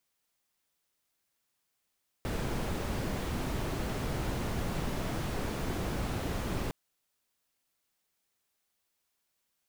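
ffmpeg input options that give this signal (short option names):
-f lavfi -i "anoisesrc=c=brown:a=0.105:d=4.46:r=44100:seed=1"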